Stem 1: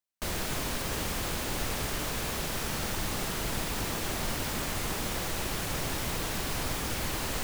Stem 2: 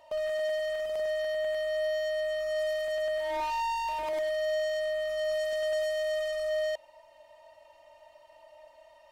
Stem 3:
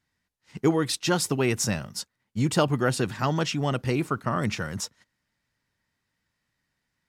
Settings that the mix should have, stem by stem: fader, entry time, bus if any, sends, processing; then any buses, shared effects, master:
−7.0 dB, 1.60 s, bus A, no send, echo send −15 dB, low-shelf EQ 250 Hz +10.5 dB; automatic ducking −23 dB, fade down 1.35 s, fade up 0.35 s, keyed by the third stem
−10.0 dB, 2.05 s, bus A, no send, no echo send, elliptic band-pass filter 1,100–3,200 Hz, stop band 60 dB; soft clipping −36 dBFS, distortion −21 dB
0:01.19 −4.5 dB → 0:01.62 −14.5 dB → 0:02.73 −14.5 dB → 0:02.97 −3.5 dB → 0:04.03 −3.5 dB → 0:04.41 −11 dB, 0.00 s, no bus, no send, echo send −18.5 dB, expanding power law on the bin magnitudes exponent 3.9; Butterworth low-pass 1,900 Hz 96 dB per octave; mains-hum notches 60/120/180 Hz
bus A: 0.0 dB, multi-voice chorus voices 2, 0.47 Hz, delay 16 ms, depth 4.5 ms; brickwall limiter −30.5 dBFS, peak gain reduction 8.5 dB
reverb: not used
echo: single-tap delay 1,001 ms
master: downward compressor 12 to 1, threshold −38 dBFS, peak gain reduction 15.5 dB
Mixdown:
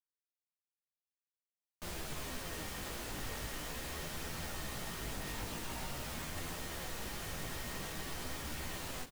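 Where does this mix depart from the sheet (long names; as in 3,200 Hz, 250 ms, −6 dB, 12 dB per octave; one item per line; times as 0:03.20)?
stem 1: missing low-shelf EQ 250 Hz +10.5 dB
stem 3: muted
master: missing downward compressor 12 to 1, threshold −38 dBFS, peak gain reduction 15.5 dB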